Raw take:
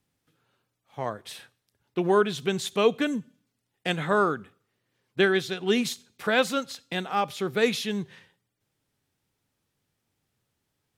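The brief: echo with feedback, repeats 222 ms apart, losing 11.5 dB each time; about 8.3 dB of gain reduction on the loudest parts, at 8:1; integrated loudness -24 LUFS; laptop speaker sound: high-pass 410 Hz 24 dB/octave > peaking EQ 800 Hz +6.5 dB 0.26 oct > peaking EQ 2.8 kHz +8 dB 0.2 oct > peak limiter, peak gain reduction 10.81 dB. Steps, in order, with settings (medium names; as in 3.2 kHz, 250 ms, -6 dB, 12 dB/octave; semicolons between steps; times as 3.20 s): compression 8:1, threshold -24 dBFS; high-pass 410 Hz 24 dB/octave; peaking EQ 800 Hz +6.5 dB 0.26 oct; peaking EQ 2.8 kHz +8 dB 0.2 oct; feedback delay 222 ms, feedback 27%, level -11.5 dB; trim +11 dB; peak limiter -12.5 dBFS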